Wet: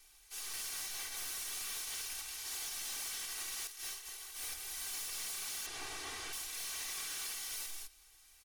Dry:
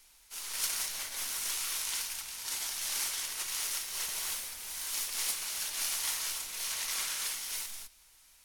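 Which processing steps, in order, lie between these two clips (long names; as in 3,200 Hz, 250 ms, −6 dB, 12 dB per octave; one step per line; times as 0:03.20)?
0:05.66–0:06.33: linear delta modulator 64 kbit/s, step −46.5 dBFS
comb filter 2.6 ms, depth 80%
0:03.67–0:04.54: compressor whose output falls as the input rises −39 dBFS, ratio −0.5
brickwall limiter −24 dBFS, peak gain reduction 8.5 dB
gain into a clipping stage and back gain 34.5 dB
level −4 dB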